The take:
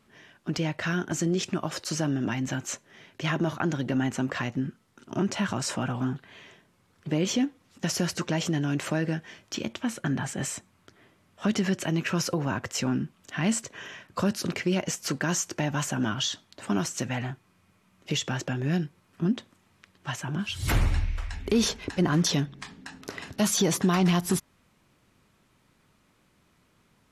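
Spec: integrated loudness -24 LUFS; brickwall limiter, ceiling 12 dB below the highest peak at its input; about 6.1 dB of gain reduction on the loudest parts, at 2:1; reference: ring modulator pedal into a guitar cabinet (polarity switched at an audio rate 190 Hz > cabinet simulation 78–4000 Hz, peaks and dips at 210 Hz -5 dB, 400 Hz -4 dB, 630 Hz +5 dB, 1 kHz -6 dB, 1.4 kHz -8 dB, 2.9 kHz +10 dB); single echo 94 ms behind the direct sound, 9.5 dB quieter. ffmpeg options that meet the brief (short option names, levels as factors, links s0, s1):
-af "acompressor=threshold=0.0316:ratio=2,alimiter=level_in=1.5:limit=0.0631:level=0:latency=1,volume=0.668,aecho=1:1:94:0.335,aeval=exprs='val(0)*sgn(sin(2*PI*190*n/s))':c=same,highpass=78,equalizer=f=210:t=q:w=4:g=-5,equalizer=f=400:t=q:w=4:g=-4,equalizer=f=630:t=q:w=4:g=5,equalizer=f=1000:t=q:w=4:g=-6,equalizer=f=1400:t=q:w=4:g=-8,equalizer=f=2900:t=q:w=4:g=10,lowpass=f=4000:w=0.5412,lowpass=f=4000:w=1.3066,volume=5.01"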